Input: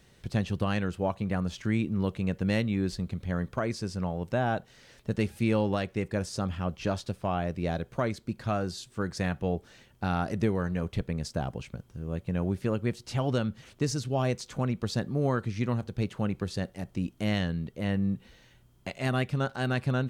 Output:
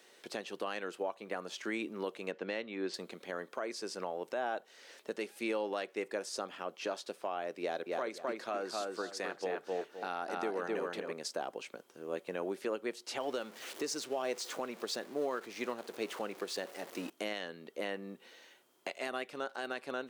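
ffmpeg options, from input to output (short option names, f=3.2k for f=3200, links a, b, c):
-filter_complex "[0:a]asettb=1/sr,asplit=3[a][b][c];[a]atrim=end=2.314[d];[b]atrim=start=2.31:end=2.94,asetpts=PTS-STARTPTS,afade=t=in:d=0.004:c=qsin,afade=t=out:st=0.626:d=0.004:c=qsin,lowpass=4k[e];[c]atrim=start=2.936[f];[d][e]acrossfade=d=0.004:c1=hsin:c2=qsin[g];[g][f]acrossfade=d=0.004:c1=qsin:c2=hsin,asettb=1/sr,asplit=3[h][i][j];[h]atrim=end=7.604[k];[i]atrim=start=7.6:end=11.13,asetpts=PTS-STARTPTS,afade=t=in:d=0.004:c=qsin,afade=t=out:st=3.526:d=0.004:c=qsin,asplit=2[l][m];[m]adelay=259,lowpass=f=3.5k:p=1,volume=-3dB,asplit=2[n][o];[o]adelay=259,lowpass=f=3.5k:p=1,volume=0.27,asplit=2[p][q];[q]adelay=259,lowpass=f=3.5k:p=1,volume=0.27,asplit=2[r][s];[s]adelay=259,lowpass=f=3.5k:p=1,volume=0.27[t];[l][n][p][r][t]amix=inputs=5:normalize=0,atrim=end_sample=155673[u];[j]atrim=start=11.126[v];[k][u]acrossfade=d=0.004:c1=hsin:c2=qsin[w];[w][v]acrossfade=d=0.004:c1=qsin:c2=hsin,asettb=1/sr,asplit=3[x][y][z];[x]atrim=end=13.204[aa];[y]atrim=start=13.2:end=17.1,asetpts=PTS-STARTPTS,afade=t=in:d=0.004:c=qsin,afade=t=out:st=3.896:d=0.004:c=qsin,aeval=exprs='val(0)+0.5*0.00841*sgn(val(0))':c=same[ab];[z]atrim=start=17.096[ac];[aa][ab]acrossfade=d=0.004:c1=hsin:c2=qsin[ad];[ad][ac]acrossfade=d=0.004:c1=qsin:c2=hsin,highpass=f=340:w=0.5412,highpass=f=340:w=1.3066,alimiter=level_in=3.5dB:limit=-24dB:level=0:latency=1:release=429,volume=-3.5dB,volume=2dB"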